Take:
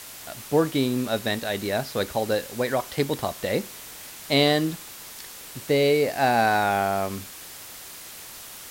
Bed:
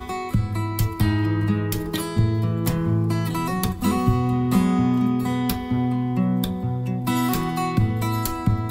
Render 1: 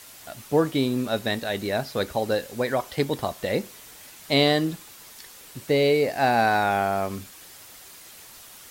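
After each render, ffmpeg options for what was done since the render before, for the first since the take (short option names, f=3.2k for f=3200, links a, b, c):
-af "afftdn=nr=6:nf=-42"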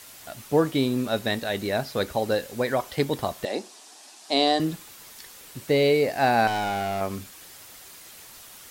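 -filter_complex "[0:a]asettb=1/sr,asplit=3[a][b][c];[a]atrim=end=3.454[d];[b]atrim=start=3.45:end=4.6,asetpts=PTS-STARTPTS,afade=t=in:d=0.004:c=qsin,afade=t=out:st=1.146:d=0.004:c=qsin,highpass=f=270:w=0.5412,highpass=f=270:w=1.3066,equalizer=f=500:t=q:w=4:g=-9,equalizer=f=740:t=q:w=4:g=6,equalizer=f=1.4k:t=q:w=4:g=-5,equalizer=f=2.1k:t=q:w=4:g=-9,equalizer=f=3.1k:t=q:w=4:g=-3,equalizer=f=5.1k:t=q:w=4:g=3,lowpass=f=9.6k:w=0.5412,lowpass=f=9.6k:w=1.3066[e];[c]atrim=start=4.596[f];[d][e]acrossfade=d=0.004:c1=hsin:c2=qsin[g];[g][f]acrossfade=d=0.004:c1=qsin:c2=hsin,asettb=1/sr,asplit=3[h][i][j];[h]atrim=end=6.474[k];[i]atrim=start=6.47:end=7.01,asetpts=PTS-STARTPTS,afade=t=in:d=0.004:c=qsin,afade=t=out:st=0.536:d=0.004:c=qsin,volume=24dB,asoftclip=hard,volume=-24dB[l];[j]atrim=start=7.006[m];[k][l]acrossfade=d=0.004:c1=hsin:c2=qsin[n];[n][m]acrossfade=d=0.004:c1=qsin:c2=hsin"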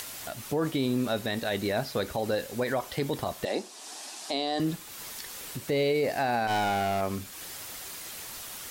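-af "alimiter=limit=-19dB:level=0:latency=1:release=38,acompressor=mode=upward:threshold=-33dB:ratio=2.5"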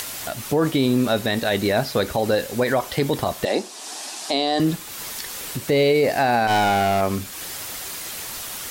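-af "volume=8.5dB"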